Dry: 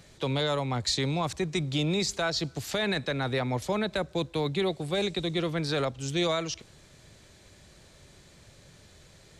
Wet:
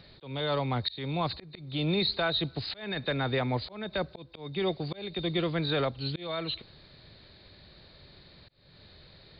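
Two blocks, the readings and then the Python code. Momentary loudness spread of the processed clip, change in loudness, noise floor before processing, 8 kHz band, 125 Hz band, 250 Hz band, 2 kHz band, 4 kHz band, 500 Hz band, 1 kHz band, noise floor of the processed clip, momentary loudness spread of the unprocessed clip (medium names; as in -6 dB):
9 LU, -2.0 dB, -56 dBFS, under -40 dB, -2.0 dB, -2.5 dB, -2.5 dB, -1.0 dB, -3.0 dB, -1.5 dB, -56 dBFS, 4 LU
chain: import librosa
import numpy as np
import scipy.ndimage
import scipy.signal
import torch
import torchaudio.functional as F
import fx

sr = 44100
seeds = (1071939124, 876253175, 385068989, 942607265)

y = fx.freq_compress(x, sr, knee_hz=3600.0, ratio=4.0)
y = fx.auto_swell(y, sr, attack_ms=344.0)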